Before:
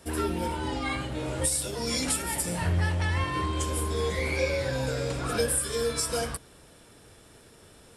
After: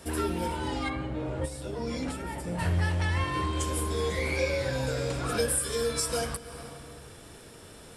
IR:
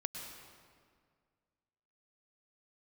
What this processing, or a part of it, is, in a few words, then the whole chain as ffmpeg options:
ducked reverb: -filter_complex "[0:a]asplit=3[a][b][c];[1:a]atrim=start_sample=2205[d];[b][d]afir=irnorm=-1:irlink=0[e];[c]apad=whole_len=351182[f];[e][f]sidechaincompress=threshold=-45dB:ratio=4:attack=7.5:release=218,volume=2.5dB[g];[a][g]amix=inputs=2:normalize=0,asplit=3[h][i][j];[h]afade=t=out:st=0.88:d=0.02[k];[i]lowpass=f=1.1k:p=1,afade=t=in:st=0.88:d=0.02,afade=t=out:st=2.58:d=0.02[l];[j]afade=t=in:st=2.58:d=0.02[m];[k][l][m]amix=inputs=3:normalize=0,volume=-2dB"

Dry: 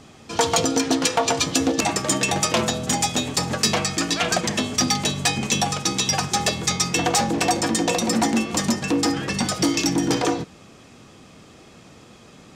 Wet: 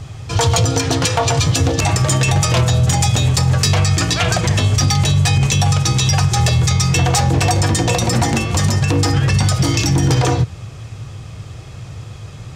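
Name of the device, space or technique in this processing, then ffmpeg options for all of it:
car stereo with a boomy subwoofer: -af "lowshelf=f=160:t=q:w=3:g=12,alimiter=limit=-13.5dB:level=0:latency=1:release=52,volume=7dB"

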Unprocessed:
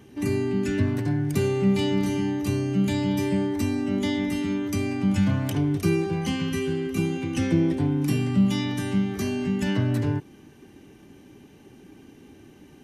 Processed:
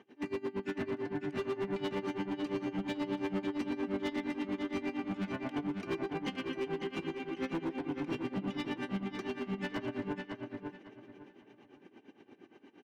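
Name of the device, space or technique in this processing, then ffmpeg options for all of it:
helicopter radio: -filter_complex "[0:a]highpass=330,lowpass=2.9k,aeval=exprs='val(0)*pow(10,-26*(0.5-0.5*cos(2*PI*8.6*n/s))/20)':c=same,asoftclip=type=hard:threshold=-30.5dB,asplit=2[a][b];[b]adelay=552,lowpass=f=4.5k:p=1,volume=-4.5dB,asplit=2[c][d];[d]adelay=552,lowpass=f=4.5k:p=1,volume=0.27,asplit=2[e][f];[f]adelay=552,lowpass=f=4.5k:p=1,volume=0.27,asplit=2[g][h];[h]adelay=552,lowpass=f=4.5k:p=1,volume=0.27[i];[a][c][e][g][i]amix=inputs=5:normalize=0"

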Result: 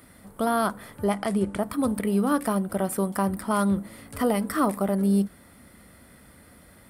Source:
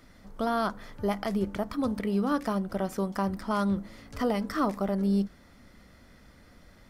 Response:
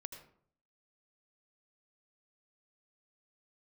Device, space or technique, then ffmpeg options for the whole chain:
budget condenser microphone: -filter_complex "[0:a]highpass=64,highshelf=f=7.6k:t=q:w=3:g=8,asettb=1/sr,asplit=3[a][b][c];[a]atrim=end=1.044[d];[b]atrim=start=1.04:end=1.63,asetpts=PTS-STARTPTS,afade=t=in:d=0.004:c=qsin,afade=t=out:st=0.586:d=0.004:c=qsin,lowpass=f=9.7k:w=0.5412,lowpass=f=9.7k:w=1.3066[e];[c]atrim=start=1.626[f];[d][e]acrossfade=d=0.004:c1=hsin:c2=qsin[g];[g][f]acrossfade=d=0.004:c1=qsin:c2=hsin,volume=4dB"

